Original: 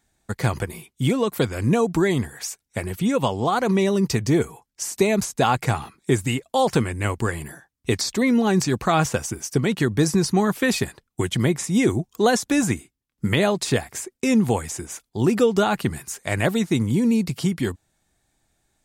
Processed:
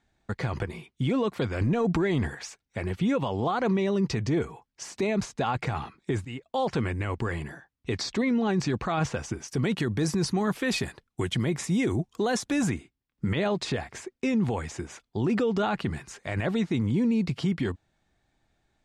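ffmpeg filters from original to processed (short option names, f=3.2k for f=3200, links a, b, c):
-filter_complex "[0:a]asettb=1/sr,asplit=3[a][b][c];[a]atrim=end=1.614[d];[b]atrim=start=1.61:end=2.35,asetpts=PTS-STARTPTS,afade=t=in:d=0.004:c=qsin,afade=t=out:st=0.736:d=0.004:c=qsin,acontrast=67[e];[c]atrim=start=2.346[f];[d][e]acrossfade=d=0.004:c1=hsin:c2=qsin[g];[g][f]acrossfade=d=0.004:c1=qsin:c2=hsin,asettb=1/sr,asplit=3[h][i][j];[h]atrim=end=9.484[k];[i]atrim=start=9.48:end=12.7,asetpts=PTS-STARTPTS,afade=t=in:d=0.004:c=qsin,afade=t=out:st=3.216:d=0.004:c=qsin,equalizer=f=12k:t=o:w=1:g=14[l];[j]atrim=start=12.696[m];[k][l]acrossfade=d=0.004:c1=hsin:c2=qsin[n];[n][m]acrossfade=d=0.004:c1=qsin:c2=hsin,asplit=2[o][p];[o]atrim=end=6.25,asetpts=PTS-STARTPTS,afade=t=out:st=6.246:d=0.004:c=hsin:silence=0.133352[q];[p]atrim=start=6.25,asetpts=PTS-STARTPTS,afade=t=in:d=0.6:silence=0.133352[r];[q][r]concat=n=2:v=0:a=1,lowpass=3.9k,alimiter=limit=-17.5dB:level=0:latency=1:release=23,volume=-1dB"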